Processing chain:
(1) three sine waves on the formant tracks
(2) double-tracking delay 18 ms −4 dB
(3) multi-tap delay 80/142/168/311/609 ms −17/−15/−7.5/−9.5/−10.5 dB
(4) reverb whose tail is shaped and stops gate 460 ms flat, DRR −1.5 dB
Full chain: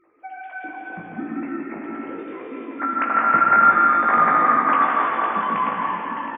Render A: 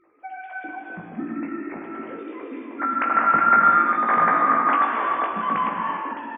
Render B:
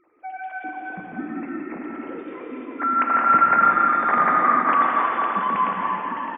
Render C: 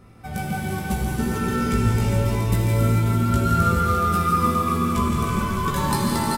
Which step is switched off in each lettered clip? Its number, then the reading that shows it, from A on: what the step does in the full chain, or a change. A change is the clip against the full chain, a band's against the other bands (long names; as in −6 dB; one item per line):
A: 3, echo-to-direct ratio 4.0 dB to 1.5 dB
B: 2, change in momentary loudness spread −2 LU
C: 1, 125 Hz band +25.5 dB